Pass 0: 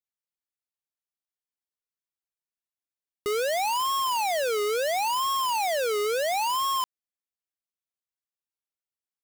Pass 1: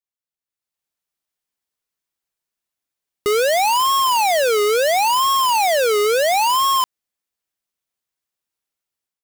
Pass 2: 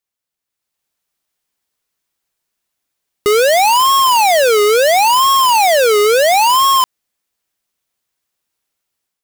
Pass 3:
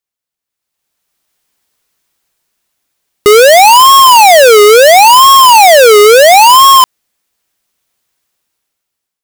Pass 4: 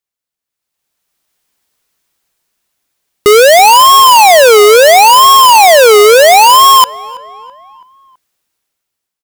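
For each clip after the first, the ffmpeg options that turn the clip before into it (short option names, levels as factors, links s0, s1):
-af "dynaudnorm=f=430:g=3:m=3.76,volume=0.794"
-af "alimiter=limit=0.106:level=0:latency=1,volume=2.82"
-af "dynaudnorm=f=220:g=9:m=3.76"
-filter_complex "[0:a]asplit=2[s0][s1];[s1]adelay=329,lowpass=f=2800:p=1,volume=0.0891,asplit=2[s2][s3];[s3]adelay=329,lowpass=f=2800:p=1,volume=0.53,asplit=2[s4][s5];[s5]adelay=329,lowpass=f=2800:p=1,volume=0.53,asplit=2[s6][s7];[s7]adelay=329,lowpass=f=2800:p=1,volume=0.53[s8];[s0][s2][s4][s6][s8]amix=inputs=5:normalize=0,volume=0.891"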